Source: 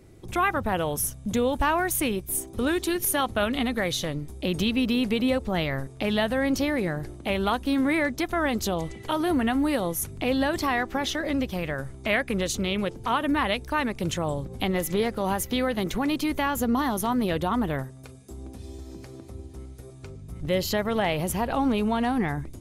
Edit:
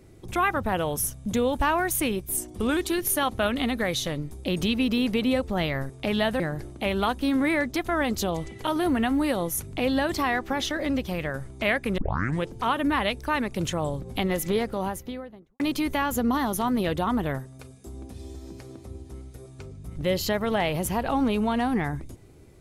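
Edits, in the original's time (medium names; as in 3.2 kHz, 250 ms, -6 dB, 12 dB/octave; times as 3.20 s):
2.37–2.74 s: speed 93%
6.37–6.84 s: delete
12.42 s: tape start 0.47 s
14.92–16.04 s: studio fade out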